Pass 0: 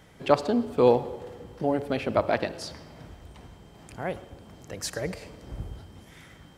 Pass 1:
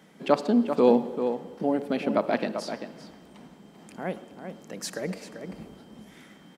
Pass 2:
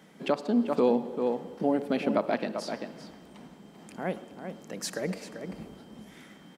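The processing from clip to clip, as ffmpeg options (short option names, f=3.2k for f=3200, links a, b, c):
-filter_complex "[0:a]highpass=61,lowshelf=f=140:t=q:w=3:g=-12,asplit=2[a][b];[b]adelay=390.7,volume=-8dB,highshelf=f=4k:g=-8.79[c];[a][c]amix=inputs=2:normalize=0,volume=-2dB"
-af "alimiter=limit=-14dB:level=0:latency=1:release=487"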